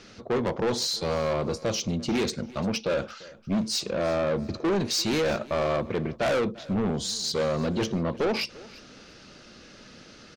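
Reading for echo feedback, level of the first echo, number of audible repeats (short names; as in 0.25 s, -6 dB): 26%, -21.0 dB, 2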